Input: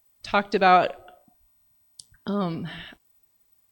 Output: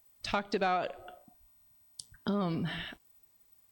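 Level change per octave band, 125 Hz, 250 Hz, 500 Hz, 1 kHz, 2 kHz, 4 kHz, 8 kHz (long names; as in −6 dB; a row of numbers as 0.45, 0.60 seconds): −4.5, −5.5, −10.0, −12.5, −10.5, −6.0, −1.0 decibels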